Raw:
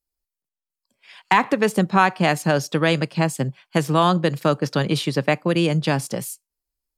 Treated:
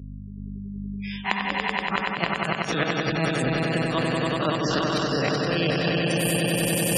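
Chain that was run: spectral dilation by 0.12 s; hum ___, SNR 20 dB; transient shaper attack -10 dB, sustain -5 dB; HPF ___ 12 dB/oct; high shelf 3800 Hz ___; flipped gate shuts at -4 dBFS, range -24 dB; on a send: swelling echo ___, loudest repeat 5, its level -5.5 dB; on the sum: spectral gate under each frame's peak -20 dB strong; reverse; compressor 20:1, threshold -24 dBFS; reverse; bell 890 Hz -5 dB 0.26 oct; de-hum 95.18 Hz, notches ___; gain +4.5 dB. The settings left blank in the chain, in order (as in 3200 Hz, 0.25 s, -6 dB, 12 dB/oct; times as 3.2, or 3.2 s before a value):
50 Hz, 57 Hz, +11 dB, 95 ms, 7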